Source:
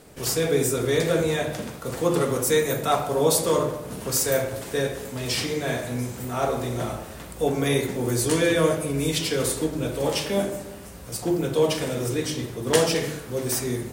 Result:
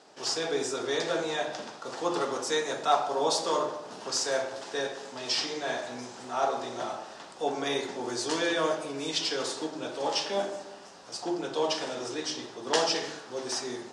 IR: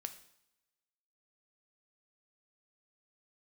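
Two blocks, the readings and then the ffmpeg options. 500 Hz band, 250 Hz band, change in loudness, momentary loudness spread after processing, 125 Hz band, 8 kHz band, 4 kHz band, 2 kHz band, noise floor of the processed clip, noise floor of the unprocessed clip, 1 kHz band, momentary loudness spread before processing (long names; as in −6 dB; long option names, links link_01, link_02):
−7.0 dB, −9.5 dB, −6.0 dB, 10 LU, −21.0 dB, −7.5 dB, −1.0 dB, −4.5 dB, −47 dBFS, −40 dBFS, −0.5 dB, 9 LU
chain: -af "highpass=420,equalizer=frequency=490:width_type=q:width=4:gain=-6,equalizer=frequency=830:width_type=q:width=4:gain=5,equalizer=frequency=2200:width_type=q:width=4:gain=-7,equalizer=frequency=5100:width_type=q:width=4:gain=4,lowpass=frequency=6500:width=0.5412,lowpass=frequency=6500:width=1.3066,volume=-2dB"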